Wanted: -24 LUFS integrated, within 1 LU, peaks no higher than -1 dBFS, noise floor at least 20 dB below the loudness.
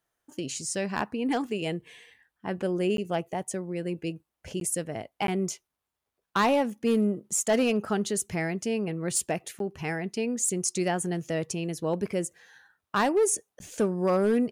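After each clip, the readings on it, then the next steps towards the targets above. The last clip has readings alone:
clipped samples 0.7%; clipping level -18.0 dBFS; dropouts 5; longest dropout 12 ms; loudness -28.5 LUFS; peak level -18.0 dBFS; loudness target -24.0 LUFS
-> clip repair -18 dBFS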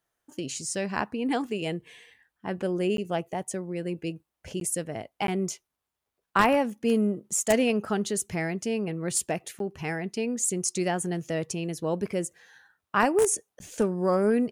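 clipped samples 0.0%; dropouts 5; longest dropout 12 ms
-> interpolate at 2.97/4.60/5.27/9.59/13.59 s, 12 ms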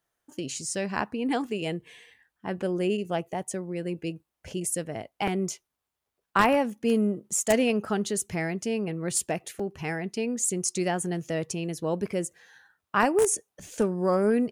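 dropouts 0; loudness -28.0 LUFS; peak level -9.0 dBFS; loudness target -24.0 LUFS
-> trim +4 dB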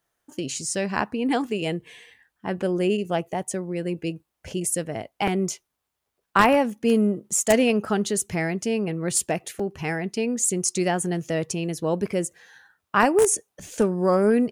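loudness -24.0 LUFS; peak level -5.0 dBFS; noise floor -81 dBFS

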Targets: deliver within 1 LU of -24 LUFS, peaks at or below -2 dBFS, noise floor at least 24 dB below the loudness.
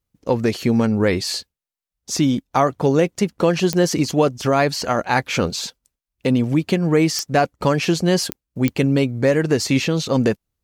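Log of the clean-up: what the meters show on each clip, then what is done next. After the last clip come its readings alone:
clicks found 4; loudness -19.5 LUFS; peak level -4.0 dBFS; loudness target -24.0 LUFS
-> de-click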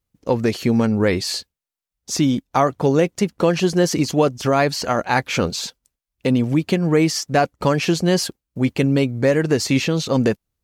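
clicks found 0; loudness -19.5 LUFS; peak level -4.0 dBFS; loudness target -24.0 LUFS
-> trim -4.5 dB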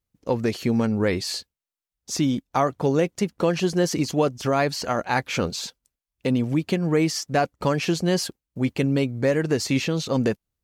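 loudness -24.0 LUFS; peak level -8.5 dBFS; noise floor -89 dBFS

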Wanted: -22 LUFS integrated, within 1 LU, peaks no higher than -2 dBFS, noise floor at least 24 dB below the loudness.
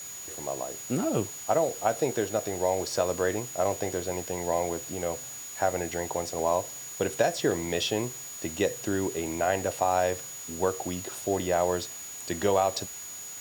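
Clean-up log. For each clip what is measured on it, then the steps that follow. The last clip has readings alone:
steady tone 6.8 kHz; tone level -39 dBFS; noise floor -41 dBFS; noise floor target -54 dBFS; loudness -29.5 LUFS; peak level -11.0 dBFS; loudness target -22.0 LUFS
-> band-stop 6.8 kHz, Q 30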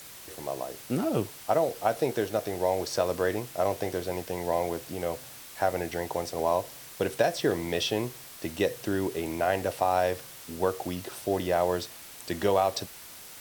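steady tone not found; noise floor -46 dBFS; noise floor target -54 dBFS
-> noise reduction 8 dB, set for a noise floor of -46 dBFS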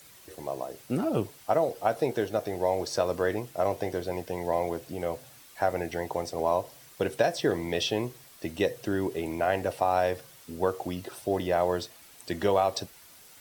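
noise floor -53 dBFS; noise floor target -54 dBFS
-> noise reduction 6 dB, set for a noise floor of -53 dBFS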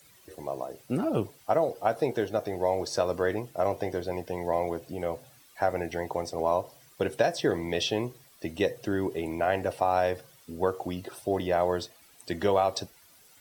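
noise floor -58 dBFS; loudness -29.5 LUFS; peak level -11.0 dBFS; loudness target -22.0 LUFS
-> trim +7.5 dB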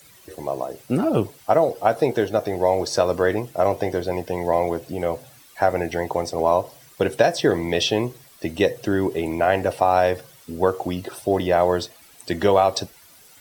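loudness -22.0 LUFS; peak level -3.5 dBFS; noise floor -50 dBFS

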